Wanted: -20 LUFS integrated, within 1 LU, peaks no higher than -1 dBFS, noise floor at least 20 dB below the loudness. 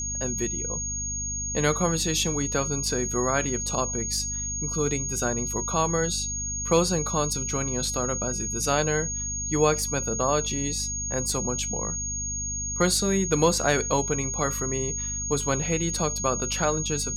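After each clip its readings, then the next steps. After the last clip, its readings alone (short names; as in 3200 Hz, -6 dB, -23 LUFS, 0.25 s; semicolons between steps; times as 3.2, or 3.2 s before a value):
hum 50 Hz; harmonics up to 250 Hz; hum level -34 dBFS; steady tone 6600 Hz; tone level -29 dBFS; loudness -25.5 LUFS; peak -8.0 dBFS; loudness target -20.0 LUFS
-> de-hum 50 Hz, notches 5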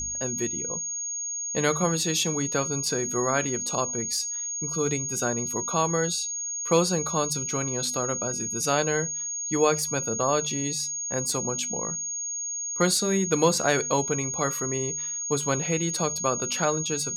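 hum none; steady tone 6600 Hz; tone level -29 dBFS
-> notch 6600 Hz, Q 30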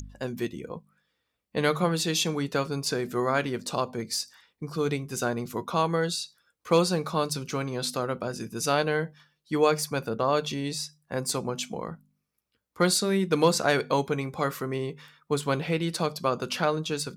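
steady tone none; loudness -28.0 LUFS; peak -8.0 dBFS; loudness target -20.0 LUFS
-> gain +8 dB; limiter -1 dBFS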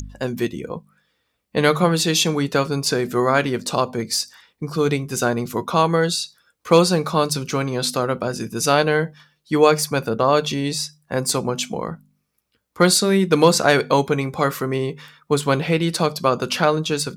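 loudness -20.0 LUFS; peak -1.0 dBFS; noise floor -72 dBFS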